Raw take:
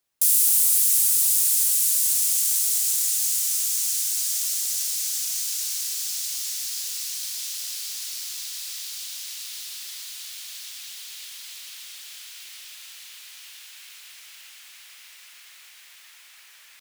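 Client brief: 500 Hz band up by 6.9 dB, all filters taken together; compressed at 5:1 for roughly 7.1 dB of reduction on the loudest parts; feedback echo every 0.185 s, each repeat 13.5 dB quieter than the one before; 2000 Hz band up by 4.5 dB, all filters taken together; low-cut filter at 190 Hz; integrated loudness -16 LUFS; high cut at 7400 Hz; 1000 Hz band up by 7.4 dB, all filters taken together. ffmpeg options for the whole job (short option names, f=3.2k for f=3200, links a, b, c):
-af "highpass=190,lowpass=7.4k,equalizer=f=500:t=o:g=6,equalizer=f=1k:t=o:g=7,equalizer=f=2k:t=o:g=4,acompressor=threshold=-32dB:ratio=5,aecho=1:1:185|370:0.211|0.0444,volume=17.5dB"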